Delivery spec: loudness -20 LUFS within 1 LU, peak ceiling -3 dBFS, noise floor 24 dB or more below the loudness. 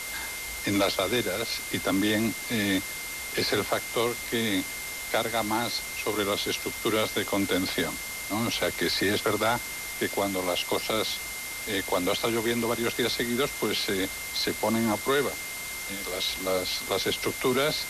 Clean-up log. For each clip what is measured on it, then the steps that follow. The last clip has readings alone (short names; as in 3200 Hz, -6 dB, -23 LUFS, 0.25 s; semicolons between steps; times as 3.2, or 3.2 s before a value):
steady tone 2100 Hz; tone level -37 dBFS; noise floor -36 dBFS; noise floor target -52 dBFS; loudness -27.5 LUFS; peak -14.0 dBFS; loudness target -20.0 LUFS
-> notch 2100 Hz, Q 30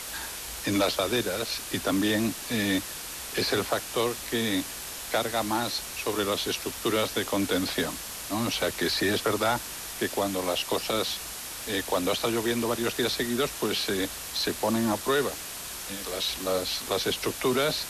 steady tone none; noise floor -38 dBFS; noise floor target -52 dBFS
-> noise print and reduce 14 dB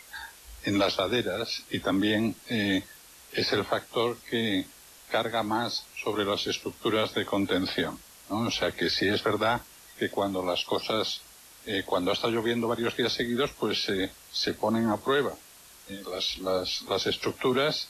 noise floor -52 dBFS; noise floor target -53 dBFS
-> noise print and reduce 6 dB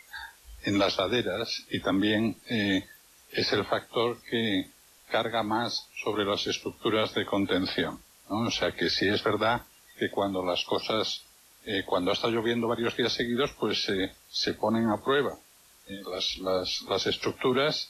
noise floor -58 dBFS; loudness -28.5 LUFS; peak -14.5 dBFS; loudness target -20.0 LUFS
-> gain +8.5 dB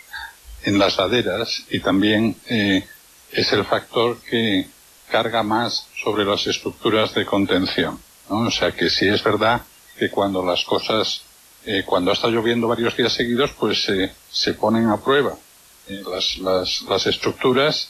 loudness -20.0 LUFS; peak -6.0 dBFS; noise floor -49 dBFS